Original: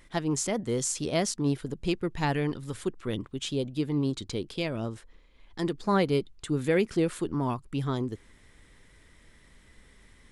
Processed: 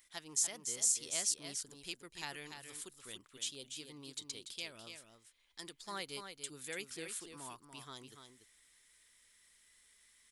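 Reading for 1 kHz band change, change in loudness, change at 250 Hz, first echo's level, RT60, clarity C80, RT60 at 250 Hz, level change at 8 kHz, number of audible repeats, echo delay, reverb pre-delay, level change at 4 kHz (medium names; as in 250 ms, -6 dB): -16.5 dB, -9.5 dB, -25.5 dB, -7.5 dB, no reverb, no reverb, no reverb, +0.5 dB, 1, 289 ms, no reverb, -4.5 dB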